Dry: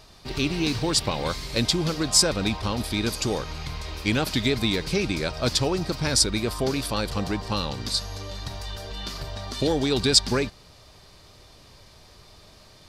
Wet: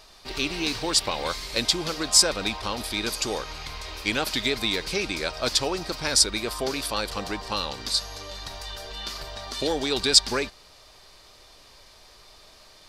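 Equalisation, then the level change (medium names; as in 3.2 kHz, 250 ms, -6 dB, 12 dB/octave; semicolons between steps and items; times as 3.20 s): peaking EQ 120 Hz -14 dB 2.5 oct; +1.5 dB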